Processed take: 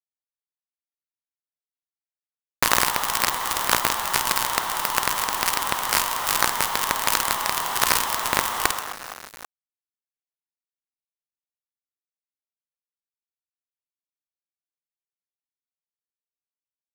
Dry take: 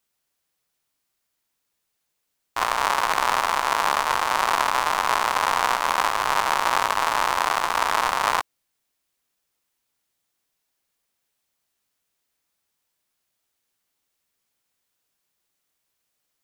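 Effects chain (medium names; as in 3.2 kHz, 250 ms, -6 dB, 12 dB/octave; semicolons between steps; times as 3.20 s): single-diode clipper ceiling -14.5 dBFS; tilt EQ +3.5 dB/octave; compressor with a negative ratio -27 dBFS, ratio -0.5; tempo 0.97×; reverse bouncing-ball echo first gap 50 ms, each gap 1.6×, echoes 5; companded quantiser 2-bit; trim -1 dB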